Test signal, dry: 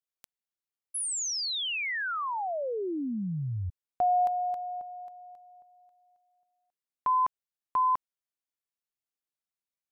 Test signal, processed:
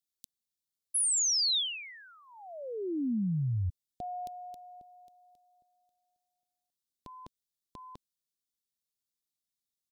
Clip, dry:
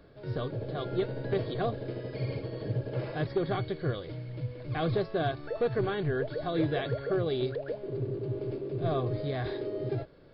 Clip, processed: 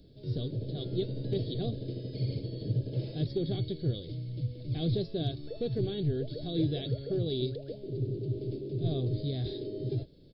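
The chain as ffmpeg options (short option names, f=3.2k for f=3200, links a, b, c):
-af "firequalizer=gain_entry='entry(240,0);entry(1100,-29);entry(3600,2)':delay=0.05:min_phase=1,volume=2dB"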